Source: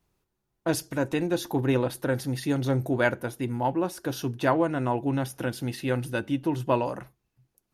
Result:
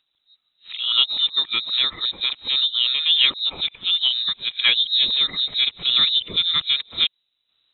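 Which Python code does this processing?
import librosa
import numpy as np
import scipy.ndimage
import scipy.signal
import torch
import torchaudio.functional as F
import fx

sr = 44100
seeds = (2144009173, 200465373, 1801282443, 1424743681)

y = np.flip(x).copy()
y = fx.freq_invert(y, sr, carrier_hz=3900)
y = y * 10.0 ** (5.5 / 20.0)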